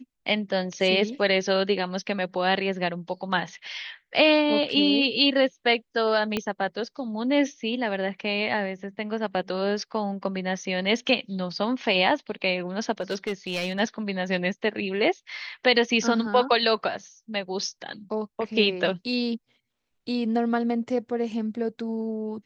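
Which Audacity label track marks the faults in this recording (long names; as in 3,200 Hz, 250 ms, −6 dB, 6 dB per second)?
6.370000	6.370000	click −12 dBFS
13.010000	13.800000	clipping −23 dBFS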